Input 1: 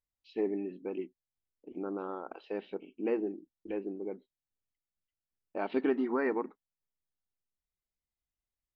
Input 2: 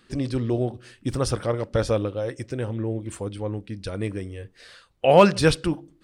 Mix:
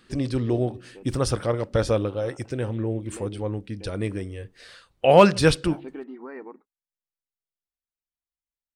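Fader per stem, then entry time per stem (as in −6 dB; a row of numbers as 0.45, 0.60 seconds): −8.5, +0.5 decibels; 0.10, 0.00 seconds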